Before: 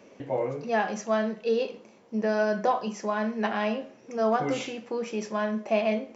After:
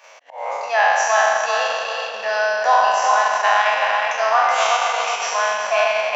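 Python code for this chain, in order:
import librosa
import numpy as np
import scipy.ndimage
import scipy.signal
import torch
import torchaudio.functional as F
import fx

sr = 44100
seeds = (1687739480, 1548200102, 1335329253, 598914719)

p1 = fx.spec_trails(x, sr, decay_s=2.23)
p2 = fx.level_steps(p1, sr, step_db=17)
p3 = p1 + F.gain(torch.from_numpy(p2), 0.0).numpy()
p4 = fx.auto_swell(p3, sr, attack_ms=201.0)
p5 = scipy.signal.sosfilt(scipy.signal.cheby2(4, 40, 360.0, 'highpass', fs=sr, output='sos'), p4)
p6 = p5 + fx.echo_tape(p5, sr, ms=380, feedback_pct=41, wet_db=-3.5, lp_hz=3900.0, drive_db=7.0, wow_cents=18, dry=0)
p7 = fx.transient(p6, sr, attack_db=-1, sustain_db=-7)
y = F.gain(torch.from_numpy(p7), 7.5).numpy()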